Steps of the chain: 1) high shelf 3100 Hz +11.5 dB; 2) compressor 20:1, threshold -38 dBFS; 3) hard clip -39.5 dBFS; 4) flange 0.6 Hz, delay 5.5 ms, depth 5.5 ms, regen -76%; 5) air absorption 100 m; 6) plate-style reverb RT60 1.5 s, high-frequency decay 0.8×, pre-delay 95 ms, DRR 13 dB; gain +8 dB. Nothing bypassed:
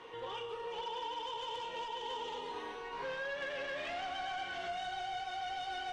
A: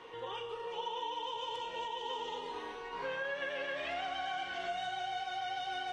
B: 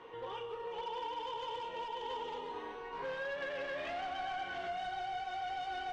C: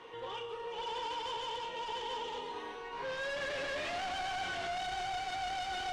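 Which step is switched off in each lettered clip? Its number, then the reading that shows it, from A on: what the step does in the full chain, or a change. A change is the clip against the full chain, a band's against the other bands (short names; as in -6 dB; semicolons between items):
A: 3, distortion -14 dB; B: 1, 4 kHz band -5.0 dB; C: 2, mean gain reduction 8.0 dB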